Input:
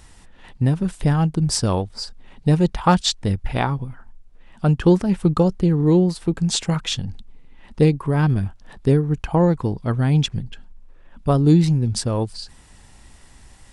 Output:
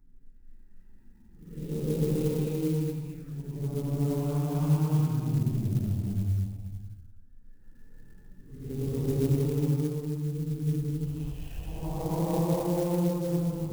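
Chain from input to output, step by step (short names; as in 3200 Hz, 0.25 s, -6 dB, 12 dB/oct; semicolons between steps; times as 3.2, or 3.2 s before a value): Wiener smoothing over 41 samples; compressor, threshold -17 dBFS, peak gain reduction 8 dB; Paulstretch 6.6×, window 0.25 s, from 7.49; envelope phaser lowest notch 540 Hz, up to 1800 Hz, full sweep at -23 dBFS; on a send at -16.5 dB: reverb RT60 0.45 s, pre-delay 32 ms; on the sum: clock jitter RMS 0.05 ms; gain -6 dB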